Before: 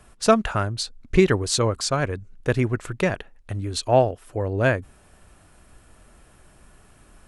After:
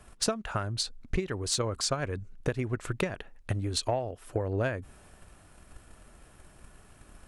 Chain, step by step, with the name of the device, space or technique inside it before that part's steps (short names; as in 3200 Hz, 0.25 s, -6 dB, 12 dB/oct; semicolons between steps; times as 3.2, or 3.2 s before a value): drum-bus smash (transient shaper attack +8 dB, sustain +3 dB; compressor 20:1, threshold -21 dBFS, peak gain reduction 18.5 dB; soft clip -10.5 dBFS, distortion -25 dB); gain -3.5 dB